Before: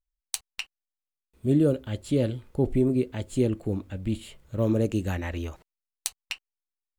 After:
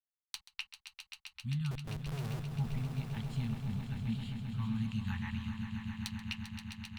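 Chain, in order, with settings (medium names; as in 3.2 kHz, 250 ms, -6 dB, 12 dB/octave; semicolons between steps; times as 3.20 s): expander -54 dBFS; Chebyshev band-stop 230–830 Hz, order 5; resonant high shelf 5.7 kHz -10 dB, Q 1.5; 1.71–2.51 s: Schmitt trigger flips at -36.5 dBFS; on a send: echo with a slow build-up 132 ms, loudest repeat 5, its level -10 dB; on the sum: trim -8 dB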